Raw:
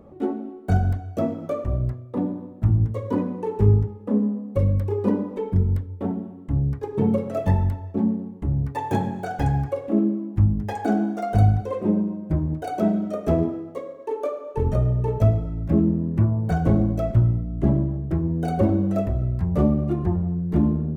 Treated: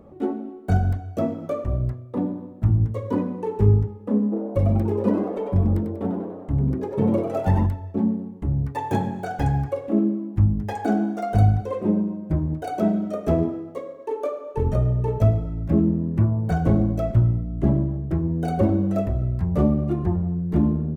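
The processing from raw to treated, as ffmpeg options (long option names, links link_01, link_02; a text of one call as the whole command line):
ffmpeg -i in.wav -filter_complex "[0:a]asplit=3[link_01][link_02][link_03];[link_01]afade=type=out:start_time=4.31:duration=0.02[link_04];[link_02]asplit=7[link_05][link_06][link_07][link_08][link_09][link_10][link_11];[link_06]adelay=96,afreqshift=120,volume=-7.5dB[link_12];[link_07]adelay=192,afreqshift=240,volume=-13.7dB[link_13];[link_08]adelay=288,afreqshift=360,volume=-19.9dB[link_14];[link_09]adelay=384,afreqshift=480,volume=-26.1dB[link_15];[link_10]adelay=480,afreqshift=600,volume=-32.3dB[link_16];[link_11]adelay=576,afreqshift=720,volume=-38.5dB[link_17];[link_05][link_12][link_13][link_14][link_15][link_16][link_17]amix=inputs=7:normalize=0,afade=type=in:start_time=4.31:duration=0.02,afade=type=out:start_time=7.65:duration=0.02[link_18];[link_03]afade=type=in:start_time=7.65:duration=0.02[link_19];[link_04][link_18][link_19]amix=inputs=3:normalize=0" out.wav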